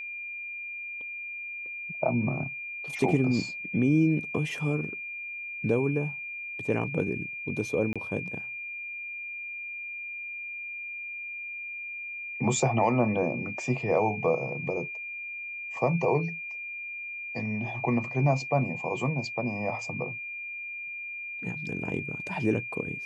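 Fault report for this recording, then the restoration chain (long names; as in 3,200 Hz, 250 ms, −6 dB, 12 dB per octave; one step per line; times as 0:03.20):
whistle 2,400 Hz −35 dBFS
0:07.93–0:07.96: drop-out 26 ms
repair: notch filter 2,400 Hz, Q 30
repair the gap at 0:07.93, 26 ms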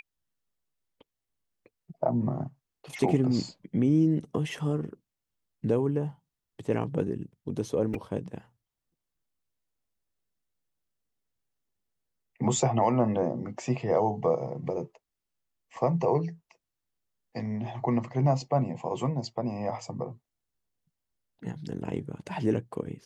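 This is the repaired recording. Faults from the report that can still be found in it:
none of them is left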